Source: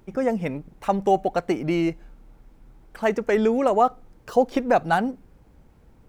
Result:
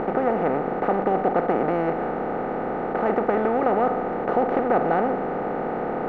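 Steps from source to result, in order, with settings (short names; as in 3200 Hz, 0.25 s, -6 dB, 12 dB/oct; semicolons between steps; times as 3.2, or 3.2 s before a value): per-bin compression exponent 0.2; LPF 1700 Hz 12 dB/oct; gain -8.5 dB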